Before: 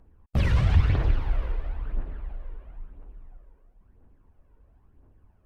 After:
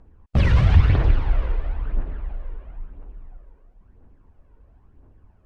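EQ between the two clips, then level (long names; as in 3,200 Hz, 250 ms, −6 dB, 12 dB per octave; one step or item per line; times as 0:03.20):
high-frequency loss of the air 58 metres
+5.5 dB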